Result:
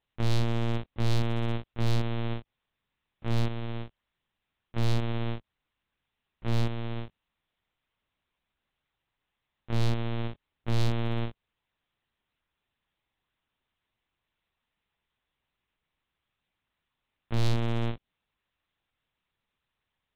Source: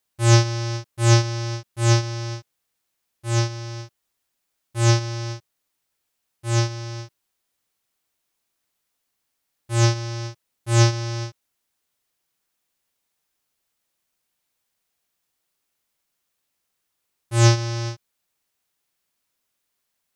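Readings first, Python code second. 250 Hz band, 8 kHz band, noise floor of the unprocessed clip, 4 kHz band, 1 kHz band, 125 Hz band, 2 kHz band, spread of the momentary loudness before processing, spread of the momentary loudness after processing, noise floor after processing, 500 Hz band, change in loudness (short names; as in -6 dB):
-4.5 dB, -22.5 dB, -77 dBFS, -11.5 dB, -10.0 dB, -9.5 dB, -11.0 dB, 18 LU, 11 LU, -85 dBFS, -9.0 dB, -10.5 dB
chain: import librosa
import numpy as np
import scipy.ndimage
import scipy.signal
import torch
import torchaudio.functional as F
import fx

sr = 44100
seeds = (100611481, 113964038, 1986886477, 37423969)

y = fx.lpc_vocoder(x, sr, seeds[0], excitation='pitch_kept', order=8)
y = np.clip(10.0 ** (18.0 / 20.0) * y, -1.0, 1.0) / 10.0 ** (18.0 / 20.0)
y = fx.dynamic_eq(y, sr, hz=1500.0, q=1.1, threshold_db=-49.0, ratio=4.0, max_db=-4)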